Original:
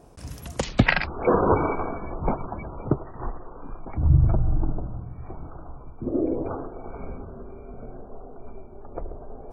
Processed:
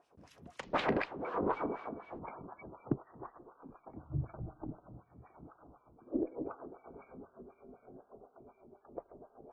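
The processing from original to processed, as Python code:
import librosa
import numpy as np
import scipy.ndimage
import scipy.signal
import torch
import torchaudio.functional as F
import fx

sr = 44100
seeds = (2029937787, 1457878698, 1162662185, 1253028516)

y = fx.dmg_wind(x, sr, seeds[0], corner_hz=590.0, level_db=-23.0, at=(0.73, 2.18), fade=0.02)
y = fx.filter_lfo_bandpass(y, sr, shape='sine', hz=4.0, low_hz=220.0, high_hz=3300.0, q=1.4)
y = fx.cheby_harmonics(y, sr, harmonics=(4,), levels_db=(-26,), full_scale_db=-11.0)
y = y * 10.0 ** (-7.0 / 20.0)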